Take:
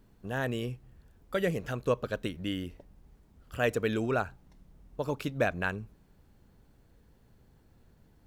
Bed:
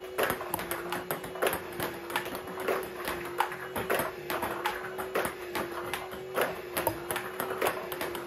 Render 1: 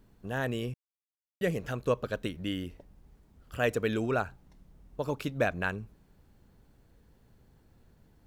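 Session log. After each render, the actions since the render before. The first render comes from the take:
0:00.74–0:01.41: silence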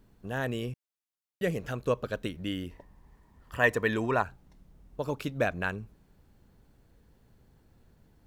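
0:02.71–0:04.23: hollow resonant body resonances 1,000/1,800 Hz, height 14 dB, ringing for 20 ms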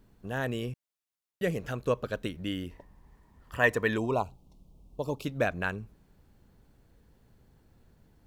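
0:03.98–0:05.25: Butterworth band-reject 1,700 Hz, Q 0.96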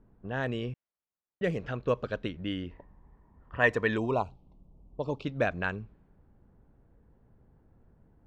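low-pass filter 4,700 Hz 12 dB per octave
low-pass that shuts in the quiet parts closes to 1,200 Hz, open at −25 dBFS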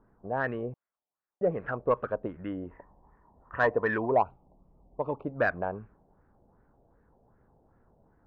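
auto-filter low-pass sine 2.6 Hz 670–1,800 Hz
mid-hump overdrive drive 9 dB, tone 1,200 Hz, clips at −11.5 dBFS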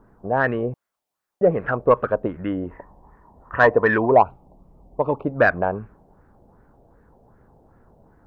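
level +10 dB

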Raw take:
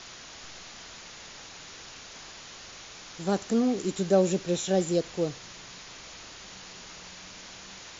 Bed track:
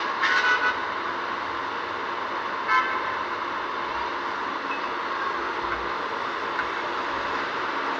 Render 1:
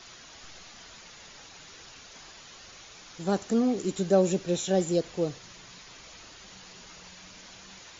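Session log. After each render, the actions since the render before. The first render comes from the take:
broadband denoise 6 dB, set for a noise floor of −46 dBFS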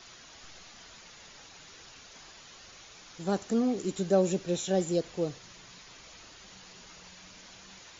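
level −2.5 dB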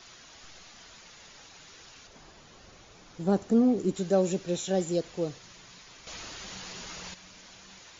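0:02.07–0:03.95: tilt shelving filter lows +6 dB
0:06.07–0:07.14: clip gain +9 dB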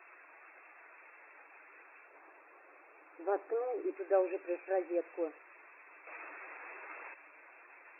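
brick-wall band-pass 280–2,700 Hz
low-shelf EQ 430 Hz −11 dB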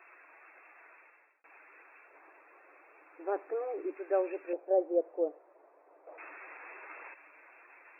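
0:00.91–0:01.44: fade out
0:04.53–0:06.18: low-pass with resonance 620 Hz, resonance Q 2.3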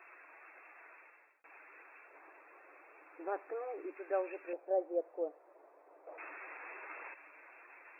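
dynamic equaliser 350 Hz, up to −8 dB, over −44 dBFS, Q 0.72

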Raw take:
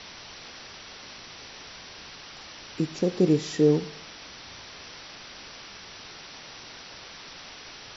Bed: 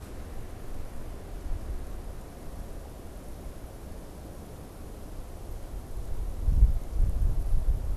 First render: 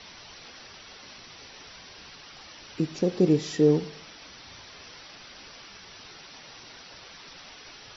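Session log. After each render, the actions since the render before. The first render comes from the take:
broadband denoise 6 dB, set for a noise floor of −45 dBFS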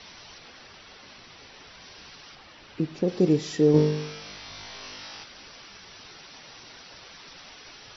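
0:00.38–0:01.81: high-frequency loss of the air 78 metres
0:02.35–0:03.08: high-frequency loss of the air 160 metres
0:03.72–0:05.24: flutter between parallel walls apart 3.4 metres, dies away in 0.73 s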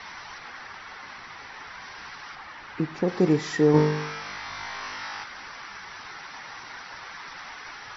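flat-topped bell 1,300 Hz +11.5 dB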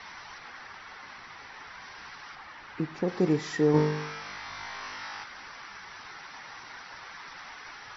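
level −4 dB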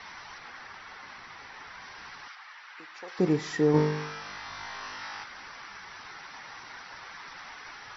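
0:02.28–0:03.19: high-pass filter 1,100 Hz
0:04.04–0:05.02: notch filter 2,200 Hz

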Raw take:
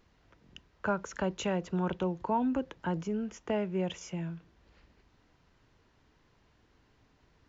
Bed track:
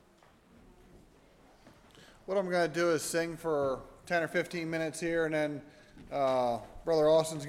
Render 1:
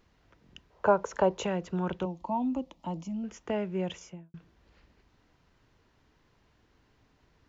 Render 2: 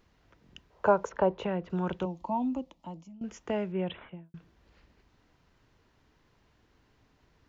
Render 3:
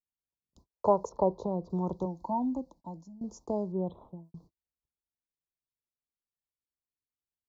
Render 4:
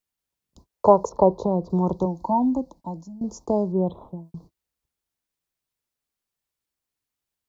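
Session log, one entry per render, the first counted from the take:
0:00.70–0:01.46: flat-topped bell 650 Hz +10 dB; 0:02.05–0:03.24: phaser with its sweep stopped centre 420 Hz, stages 6; 0:03.93–0:04.34: fade out and dull
0:01.09–0:01.70: high-frequency loss of the air 270 metres; 0:02.42–0:03.21: fade out, to −18.5 dB; 0:03.72–0:04.25: bad sample-rate conversion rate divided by 6×, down none, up filtered
noise gate −54 dBFS, range −41 dB; elliptic band-stop filter 1,000–4,400 Hz, stop band 40 dB
level +9.5 dB

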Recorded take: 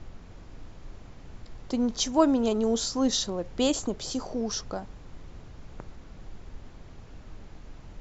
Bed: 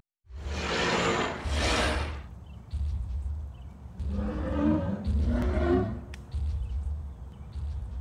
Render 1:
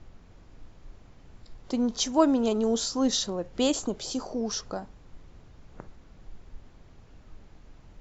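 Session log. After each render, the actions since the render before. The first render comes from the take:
noise reduction from a noise print 6 dB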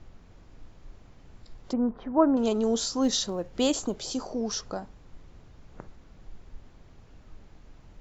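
0:01.73–0:02.37: low-pass filter 1,600 Hz 24 dB per octave
0:03.02–0:03.97: floating-point word with a short mantissa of 6 bits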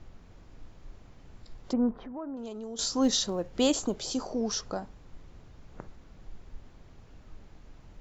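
0:01.96–0:02.79: downward compressor 3 to 1, threshold −41 dBFS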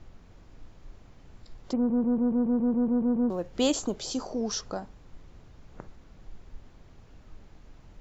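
0:01.76: stutter in place 0.14 s, 11 plays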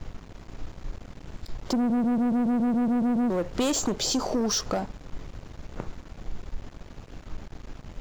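leveller curve on the samples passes 3
downward compressor, threshold −23 dBFS, peak gain reduction 6 dB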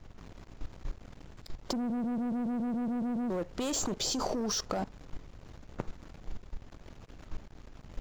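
output level in coarse steps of 16 dB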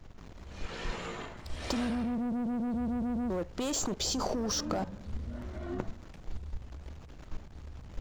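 mix in bed −13.5 dB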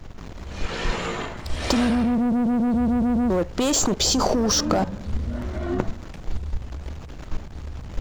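level +11.5 dB

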